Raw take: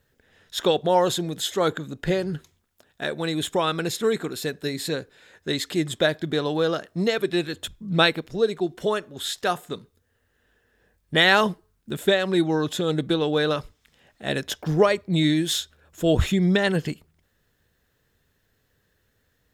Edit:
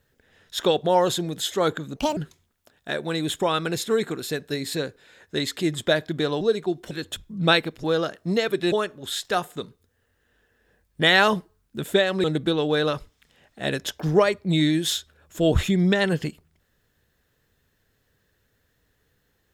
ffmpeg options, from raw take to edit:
-filter_complex "[0:a]asplit=8[s0][s1][s2][s3][s4][s5][s6][s7];[s0]atrim=end=1.964[s8];[s1]atrim=start=1.96:end=2.3,asetpts=PTS-STARTPTS,asetrate=71883,aresample=44100[s9];[s2]atrim=start=2.296:end=6.542[s10];[s3]atrim=start=8.348:end=8.852[s11];[s4]atrim=start=7.418:end=8.352[s12];[s5]atrim=start=6.538:end=7.422[s13];[s6]atrim=start=8.848:end=12.372[s14];[s7]atrim=start=12.868[s15];[s8][s9]acrossfade=d=0.004:c1=hsin:c2=hsin[s16];[s16][s10]acrossfade=d=0.004:c1=hsin:c2=hsin[s17];[s17][s11]acrossfade=d=0.004:c1=hsin:c2=hsin[s18];[s18][s12]acrossfade=d=0.004:c1=hsin:c2=hsin[s19];[s19][s13]acrossfade=d=0.004:c1=hsin:c2=hsin[s20];[s20][s14]acrossfade=d=0.004:c1=hsin:c2=hsin[s21];[s21][s15]acrossfade=d=0.004:c1=hsin:c2=hsin"

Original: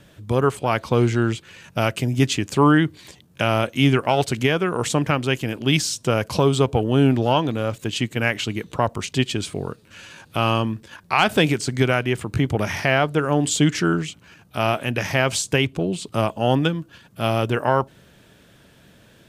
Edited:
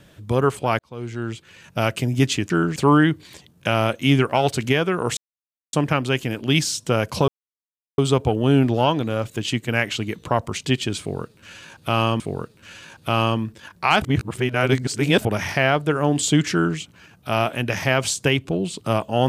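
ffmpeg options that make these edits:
-filter_complex "[0:a]asplit=9[s0][s1][s2][s3][s4][s5][s6][s7][s8];[s0]atrim=end=0.79,asetpts=PTS-STARTPTS,afade=t=out:st=0.786:d=0.004:c=hsin[s9];[s1]atrim=start=0.79:end=2.502,asetpts=PTS-STARTPTS,afade=t=in:d=1.09[s10];[s2]atrim=start=13.798:end=14.062[s11];[s3]atrim=start=2.498:end=4.91,asetpts=PTS-STARTPTS,afade=t=out:st=2.408:d=0.004:c=hsin,apad=pad_dur=0.56[s12];[s4]atrim=start=4.91:end=6.46,asetpts=PTS-STARTPTS,afade=t=in:d=0.004:c=hsin,afade=t=out:st=1.546:d=0.004:c=hsin,apad=pad_dur=0.7[s13];[s5]atrim=start=6.46:end=10.682,asetpts=PTS-STARTPTS,afade=t=in:d=0.004:c=hsin[s14];[s6]atrim=start=9.478:end=11.302[s15];[s7]atrim=start=11.298:end=12.532,asetpts=PTS-STARTPTS,areverse[s16];[s8]atrim=start=12.528[s17];[s9][s10]concat=n=2:v=0:a=1[s18];[s18][s11]acrossfade=d=0.004:c1=hsin:c2=hsin[s19];[s12][s13][s14]concat=n=3:v=0:a=1[s20];[s19][s20]acrossfade=d=0.004:c1=hsin:c2=hsin[s21];[s21][s15]acrossfade=d=0.004:c1=hsin:c2=hsin[s22];[s22][s16]acrossfade=d=0.004:c1=hsin:c2=hsin[s23];[s23][s17]acrossfade=d=0.004:c1=hsin:c2=hsin"

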